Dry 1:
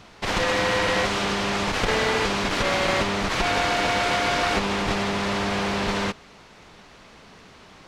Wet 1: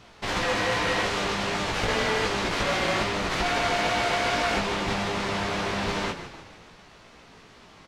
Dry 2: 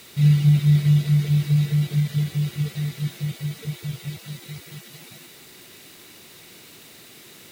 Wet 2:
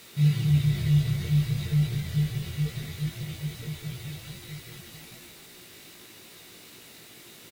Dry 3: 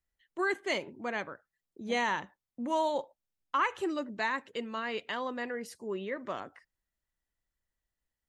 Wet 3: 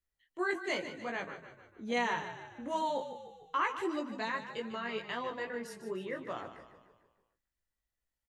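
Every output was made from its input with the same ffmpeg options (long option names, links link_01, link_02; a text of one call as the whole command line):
ffmpeg -i in.wav -filter_complex "[0:a]flanger=delay=16.5:depth=2.3:speed=2.5,asplit=2[link_01][link_02];[link_02]asplit=6[link_03][link_04][link_05][link_06][link_07][link_08];[link_03]adelay=149,afreqshift=-32,volume=-11dB[link_09];[link_04]adelay=298,afreqshift=-64,volume=-16.7dB[link_10];[link_05]adelay=447,afreqshift=-96,volume=-22.4dB[link_11];[link_06]adelay=596,afreqshift=-128,volume=-28dB[link_12];[link_07]adelay=745,afreqshift=-160,volume=-33.7dB[link_13];[link_08]adelay=894,afreqshift=-192,volume=-39.4dB[link_14];[link_09][link_10][link_11][link_12][link_13][link_14]amix=inputs=6:normalize=0[link_15];[link_01][link_15]amix=inputs=2:normalize=0" out.wav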